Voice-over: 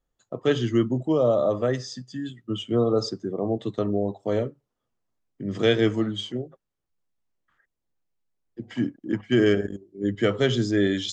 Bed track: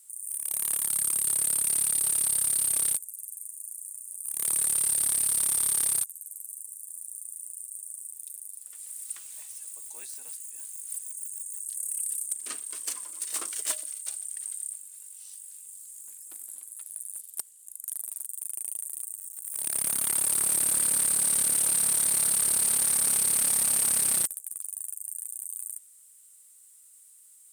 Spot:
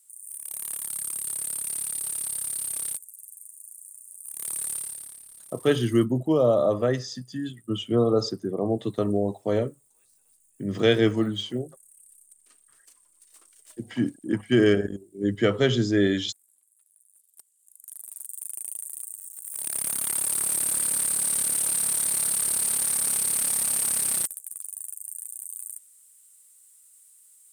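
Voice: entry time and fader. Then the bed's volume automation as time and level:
5.20 s, +0.5 dB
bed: 4.74 s -5 dB
5.25 s -22.5 dB
17.07 s -22.5 dB
18.32 s -0.5 dB

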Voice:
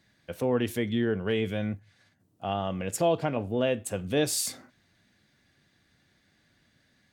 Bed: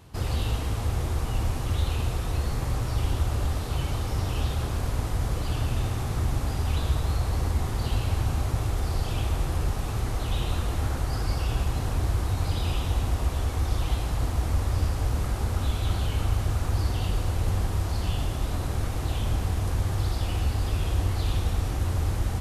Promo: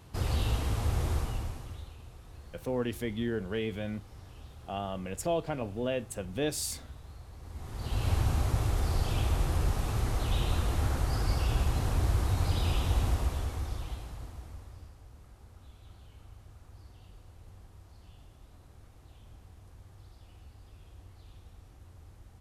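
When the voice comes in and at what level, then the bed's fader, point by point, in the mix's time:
2.25 s, -5.5 dB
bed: 1.15 s -2.5 dB
1.96 s -22 dB
7.39 s -22 dB
8.08 s -2 dB
13.08 s -2 dB
15.02 s -26.5 dB

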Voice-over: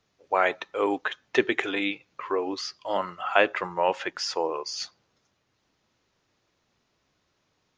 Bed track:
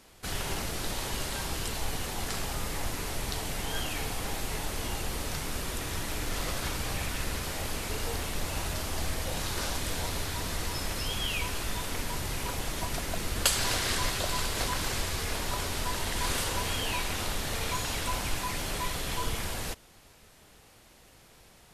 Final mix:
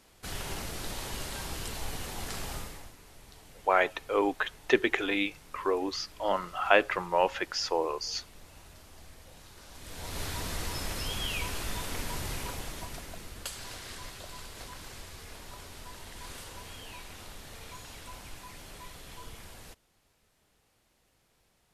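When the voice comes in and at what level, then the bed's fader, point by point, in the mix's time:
3.35 s, -1.5 dB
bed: 2.56 s -4 dB
2.96 s -19.5 dB
9.65 s -19.5 dB
10.23 s -2 dB
12.31 s -2 dB
13.46 s -14 dB

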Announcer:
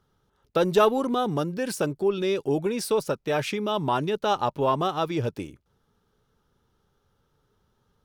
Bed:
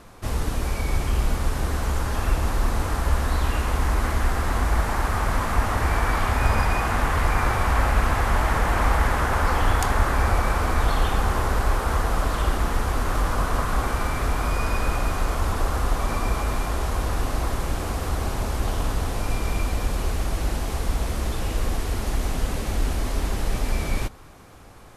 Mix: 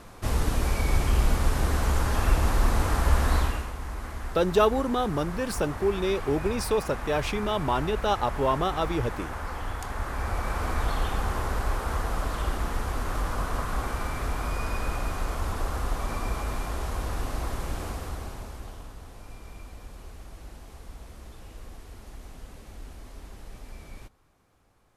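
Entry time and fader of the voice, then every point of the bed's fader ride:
3.80 s, -1.5 dB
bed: 3.38 s 0 dB
3.74 s -13 dB
9.81 s -13 dB
10.66 s -6 dB
17.85 s -6 dB
18.93 s -19 dB

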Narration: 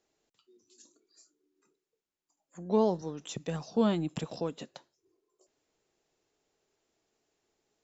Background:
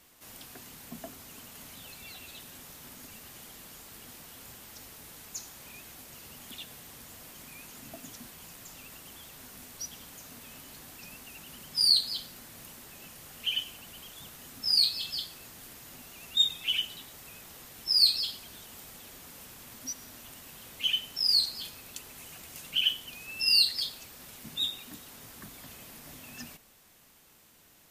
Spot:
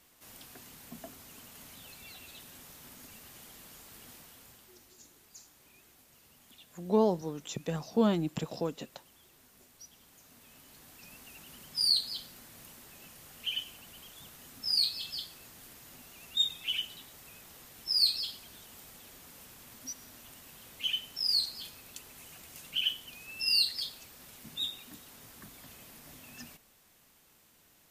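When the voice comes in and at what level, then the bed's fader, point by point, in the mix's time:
4.20 s, +0.5 dB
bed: 4.13 s -3.5 dB
4.93 s -13 dB
9.93 s -13 dB
11.27 s -4 dB

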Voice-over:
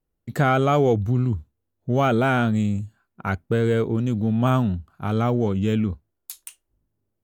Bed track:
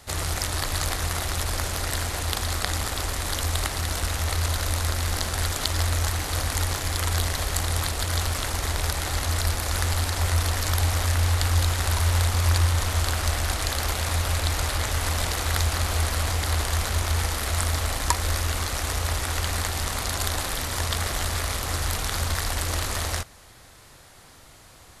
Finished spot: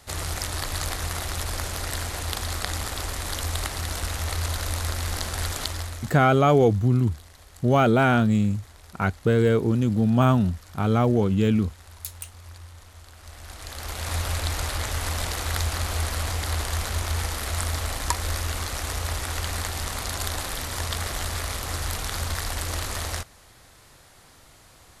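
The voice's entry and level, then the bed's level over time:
5.75 s, +1.0 dB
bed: 5.61 s -2.5 dB
6.39 s -23 dB
13.11 s -23 dB
14.14 s -2.5 dB

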